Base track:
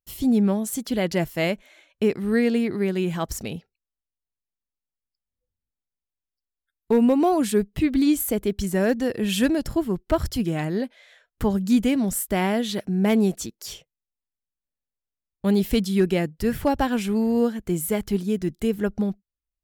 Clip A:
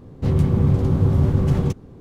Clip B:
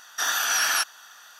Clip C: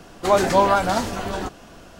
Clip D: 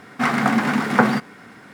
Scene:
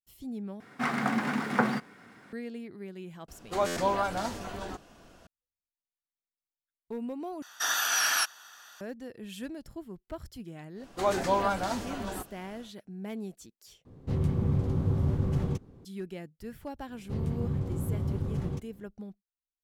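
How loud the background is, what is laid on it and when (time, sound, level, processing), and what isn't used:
base track −18.5 dB
0:00.60: overwrite with D −10 dB
0:03.28: mix in C −11 dB + buffer that repeats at 0:00.38
0:07.42: overwrite with B −3.5 dB
0:10.74: mix in C −10 dB, fades 0.10 s
0:13.85: overwrite with A −10 dB
0:16.87: mix in A −14 dB

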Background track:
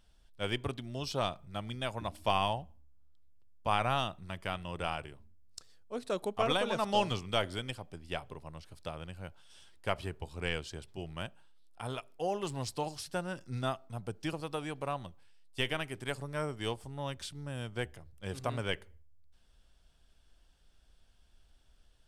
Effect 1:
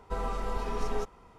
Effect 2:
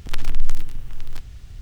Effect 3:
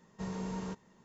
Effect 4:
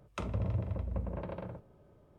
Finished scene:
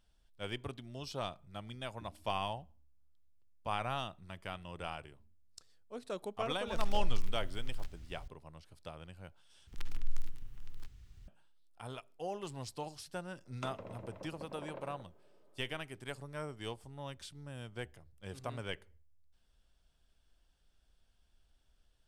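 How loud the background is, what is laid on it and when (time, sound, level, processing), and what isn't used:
background track −6.5 dB
0:06.67: mix in 2 −11.5 dB + downward compressor 2 to 1, threshold −13 dBFS
0:09.67: overwrite with 2 −16.5 dB + parametric band 620 Hz −6.5 dB 0.51 octaves
0:13.45: mix in 4 −4 dB + high-pass filter 310 Hz
not used: 1, 3

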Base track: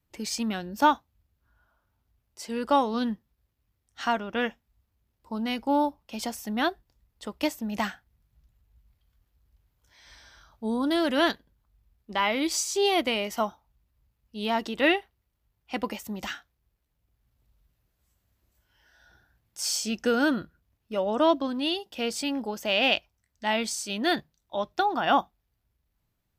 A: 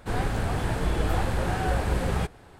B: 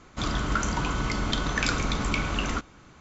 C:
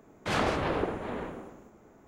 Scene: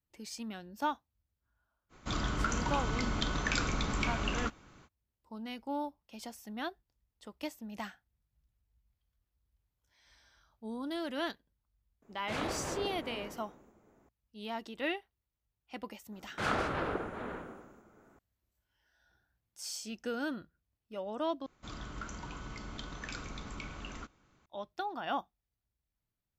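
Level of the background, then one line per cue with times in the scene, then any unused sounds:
base track −12.5 dB
0:01.89: mix in B −6 dB, fades 0.05 s
0:12.02: mix in C −9 dB
0:16.12: mix in C −6 dB + parametric band 1,400 Hz +8.5 dB 0.39 octaves
0:21.46: overwrite with B −16.5 dB
not used: A

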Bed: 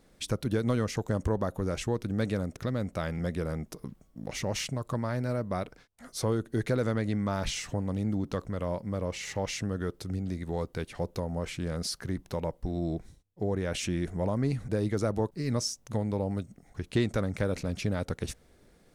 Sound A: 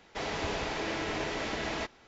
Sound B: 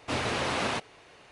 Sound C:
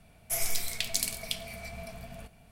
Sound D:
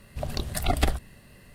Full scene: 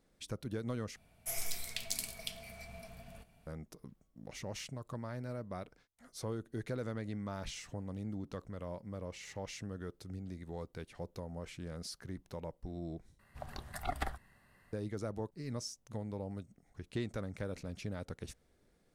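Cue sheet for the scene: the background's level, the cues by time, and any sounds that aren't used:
bed −11 dB
0:00.96: overwrite with C −8 dB
0:13.19: overwrite with D −16.5 dB + flat-topped bell 1,200 Hz +9.5 dB
not used: A, B

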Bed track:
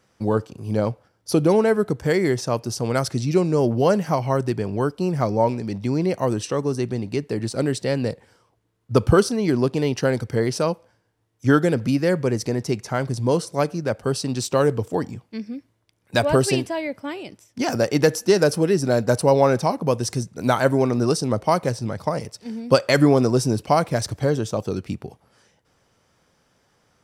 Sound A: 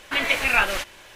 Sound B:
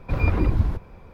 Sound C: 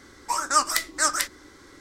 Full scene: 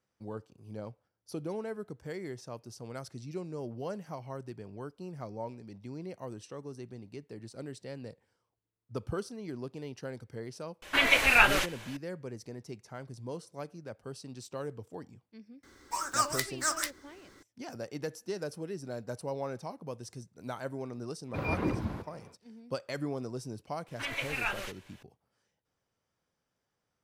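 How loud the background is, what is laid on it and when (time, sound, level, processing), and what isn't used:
bed track −20 dB
0:10.82: mix in A −1.5 dB
0:15.63: mix in C −8 dB + one scale factor per block 5 bits
0:21.25: mix in B −4.5 dB, fades 0.10 s + high-pass filter 160 Hz
0:23.88: mix in A −13.5 dB

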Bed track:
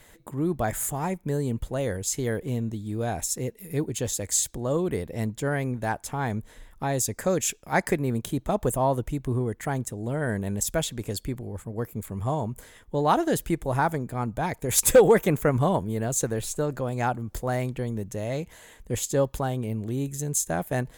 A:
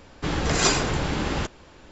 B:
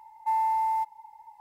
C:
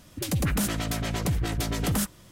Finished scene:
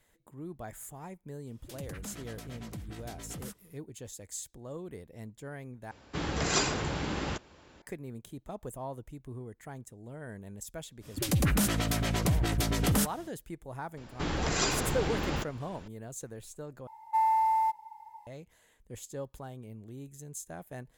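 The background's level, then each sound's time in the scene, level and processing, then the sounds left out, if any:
bed track −16 dB
0:01.47: mix in C −17 dB
0:05.91: overwrite with A −7 dB + high-pass filter 51 Hz
0:11.00: mix in C −0.5 dB, fades 0.05 s
0:13.97: mix in A −3 dB + downward compressor 1.5 to 1, threshold −30 dBFS
0:16.87: overwrite with B

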